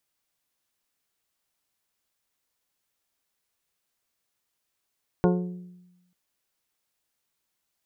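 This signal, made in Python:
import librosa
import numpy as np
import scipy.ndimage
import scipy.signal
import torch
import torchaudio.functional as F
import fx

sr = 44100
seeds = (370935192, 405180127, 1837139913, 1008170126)

y = fx.strike_glass(sr, length_s=0.89, level_db=-18.0, body='bell', hz=179.0, decay_s=1.05, tilt_db=2.5, modes=8)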